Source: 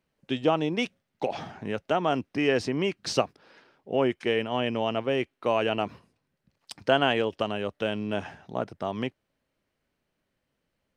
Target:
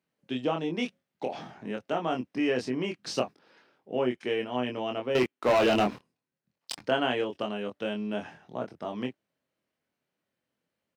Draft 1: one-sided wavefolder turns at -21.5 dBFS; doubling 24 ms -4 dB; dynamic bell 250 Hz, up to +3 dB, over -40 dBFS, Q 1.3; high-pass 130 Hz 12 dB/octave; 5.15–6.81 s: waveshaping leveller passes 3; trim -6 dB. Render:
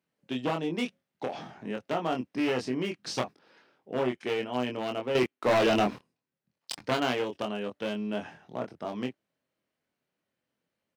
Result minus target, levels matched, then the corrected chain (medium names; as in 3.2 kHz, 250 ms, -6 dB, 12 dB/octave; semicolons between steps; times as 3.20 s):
one-sided wavefolder: distortion +39 dB
one-sided wavefolder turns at -10 dBFS; doubling 24 ms -4 dB; dynamic bell 250 Hz, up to +3 dB, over -40 dBFS, Q 1.3; high-pass 130 Hz 12 dB/octave; 5.15–6.81 s: waveshaping leveller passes 3; trim -6 dB